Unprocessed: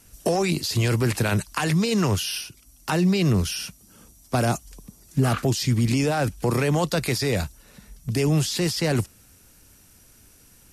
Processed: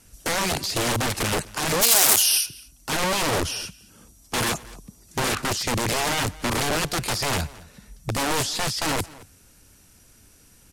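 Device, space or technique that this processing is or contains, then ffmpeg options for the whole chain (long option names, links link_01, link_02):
overflowing digital effects unit: -filter_complex "[0:a]aeval=exprs='(mod(8.41*val(0)+1,2)-1)/8.41':channel_layout=same,lowpass=12000,asplit=3[link_01][link_02][link_03];[link_01]afade=type=out:start_time=1.81:duration=0.02[link_04];[link_02]aemphasis=mode=production:type=riaa,afade=type=in:start_time=1.81:duration=0.02,afade=type=out:start_time=2.45:duration=0.02[link_05];[link_03]afade=type=in:start_time=2.45:duration=0.02[link_06];[link_04][link_05][link_06]amix=inputs=3:normalize=0,asplit=2[link_07][link_08];[link_08]adelay=221.6,volume=-20dB,highshelf=frequency=4000:gain=-4.99[link_09];[link_07][link_09]amix=inputs=2:normalize=0"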